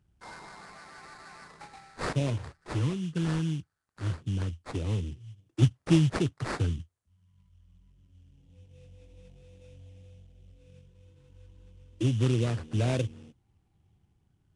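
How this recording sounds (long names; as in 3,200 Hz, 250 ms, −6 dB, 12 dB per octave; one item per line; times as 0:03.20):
phaser sweep stages 2, 0.24 Hz, lowest notch 660–1,500 Hz
aliases and images of a low sample rate 3,100 Hz, jitter 20%
Nellymoser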